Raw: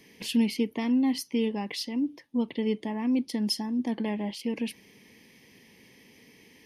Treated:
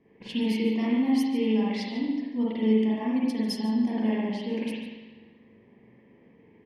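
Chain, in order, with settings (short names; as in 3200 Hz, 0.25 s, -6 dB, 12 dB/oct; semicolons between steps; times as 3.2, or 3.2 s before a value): low-pass opened by the level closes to 970 Hz, open at -26 dBFS; echo 0.145 s -15.5 dB; spring tank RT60 1.2 s, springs 41/50 ms, chirp 45 ms, DRR -6.5 dB; gain -5.5 dB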